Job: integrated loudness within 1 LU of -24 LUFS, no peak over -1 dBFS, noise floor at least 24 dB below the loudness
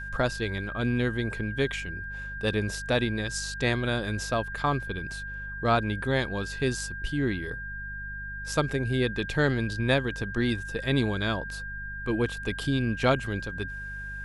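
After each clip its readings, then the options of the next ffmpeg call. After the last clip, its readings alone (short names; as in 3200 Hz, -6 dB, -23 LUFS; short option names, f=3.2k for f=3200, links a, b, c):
hum 50 Hz; harmonics up to 200 Hz; hum level -38 dBFS; steady tone 1600 Hz; tone level -36 dBFS; loudness -29.0 LUFS; peak -9.0 dBFS; loudness target -24.0 LUFS
-> -af "bandreject=f=50:t=h:w=4,bandreject=f=100:t=h:w=4,bandreject=f=150:t=h:w=4,bandreject=f=200:t=h:w=4"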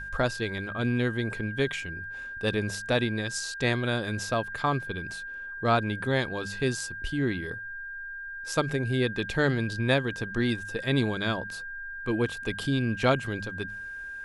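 hum none; steady tone 1600 Hz; tone level -36 dBFS
-> -af "bandreject=f=1.6k:w=30"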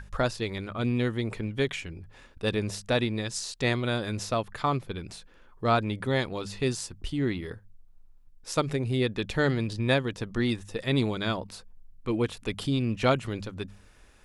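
steady tone none; loudness -29.5 LUFS; peak -9.0 dBFS; loudness target -24.0 LUFS
-> -af "volume=5.5dB"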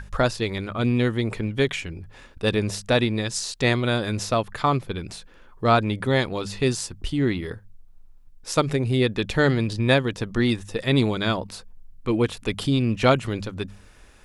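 loudness -24.0 LUFS; peak -3.5 dBFS; noise floor -49 dBFS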